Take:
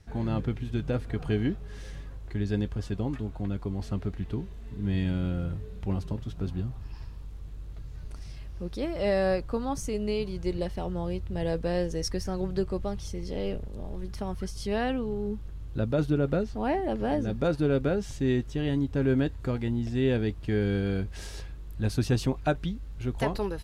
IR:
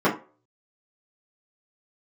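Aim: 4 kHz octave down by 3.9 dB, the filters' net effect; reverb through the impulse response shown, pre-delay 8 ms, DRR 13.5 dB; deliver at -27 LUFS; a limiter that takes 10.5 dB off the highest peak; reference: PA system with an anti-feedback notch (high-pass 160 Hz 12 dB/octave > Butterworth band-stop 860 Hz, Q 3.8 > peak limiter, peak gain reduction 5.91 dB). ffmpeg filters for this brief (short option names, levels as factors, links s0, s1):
-filter_complex "[0:a]equalizer=f=4000:t=o:g=-5.5,alimiter=level_in=1.12:limit=0.0631:level=0:latency=1,volume=0.891,asplit=2[s0][s1];[1:a]atrim=start_sample=2205,adelay=8[s2];[s1][s2]afir=irnorm=-1:irlink=0,volume=0.0266[s3];[s0][s3]amix=inputs=2:normalize=0,highpass=160,asuperstop=centerf=860:order=8:qfactor=3.8,volume=3.76,alimiter=limit=0.15:level=0:latency=1"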